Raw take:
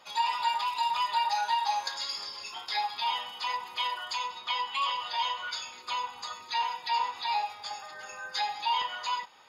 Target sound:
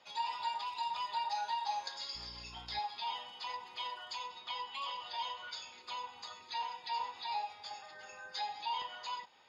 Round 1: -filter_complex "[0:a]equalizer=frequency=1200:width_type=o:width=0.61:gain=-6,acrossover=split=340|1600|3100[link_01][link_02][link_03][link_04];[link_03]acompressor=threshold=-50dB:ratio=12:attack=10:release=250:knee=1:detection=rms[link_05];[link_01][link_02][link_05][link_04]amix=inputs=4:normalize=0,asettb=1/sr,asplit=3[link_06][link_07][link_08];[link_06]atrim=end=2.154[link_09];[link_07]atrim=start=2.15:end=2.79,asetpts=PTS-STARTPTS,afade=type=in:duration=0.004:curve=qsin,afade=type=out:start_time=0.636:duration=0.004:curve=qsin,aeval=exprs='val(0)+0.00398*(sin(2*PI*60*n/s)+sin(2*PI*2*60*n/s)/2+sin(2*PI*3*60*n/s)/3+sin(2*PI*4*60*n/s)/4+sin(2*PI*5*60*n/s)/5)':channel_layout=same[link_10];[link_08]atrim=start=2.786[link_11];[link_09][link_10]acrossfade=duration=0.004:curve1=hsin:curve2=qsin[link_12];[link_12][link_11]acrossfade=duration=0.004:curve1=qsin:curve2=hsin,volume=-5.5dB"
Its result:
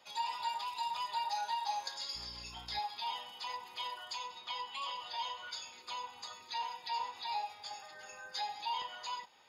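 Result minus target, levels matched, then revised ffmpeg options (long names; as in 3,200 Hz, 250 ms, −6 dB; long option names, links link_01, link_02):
8,000 Hz band +4.5 dB
-filter_complex "[0:a]lowpass=5700,equalizer=frequency=1200:width_type=o:width=0.61:gain=-6,acrossover=split=340|1600|3100[link_01][link_02][link_03][link_04];[link_03]acompressor=threshold=-50dB:ratio=12:attack=10:release=250:knee=1:detection=rms[link_05];[link_01][link_02][link_05][link_04]amix=inputs=4:normalize=0,asettb=1/sr,asplit=3[link_06][link_07][link_08];[link_06]atrim=end=2.154[link_09];[link_07]atrim=start=2.15:end=2.79,asetpts=PTS-STARTPTS,afade=type=in:duration=0.004:curve=qsin,afade=type=out:start_time=0.636:duration=0.004:curve=qsin,aeval=exprs='val(0)+0.00398*(sin(2*PI*60*n/s)+sin(2*PI*2*60*n/s)/2+sin(2*PI*3*60*n/s)/3+sin(2*PI*4*60*n/s)/4+sin(2*PI*5*60*n/s)/5)':channel_layout=same[link_10];[link_08]atrim=start=2.786[link_11];[link_09][link_10]acrossfade=duration=0.004:curve1=hsin:curve2=qsin[link_12];[link_12][link_11]acrossfade=duration=0.004:curve1=qsin:curve2=hsin,volume=-5.5dB"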